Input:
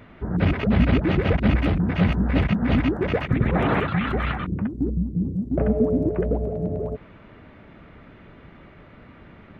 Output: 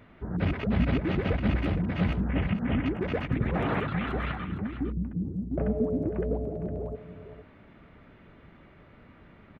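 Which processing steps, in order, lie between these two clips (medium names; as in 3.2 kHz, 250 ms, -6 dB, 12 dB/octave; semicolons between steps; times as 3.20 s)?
2.28–2.86 s: Chebyshev low-pass 3.2 kHz, order 5; delay 459 ms -11.5 dB; trim -7 dB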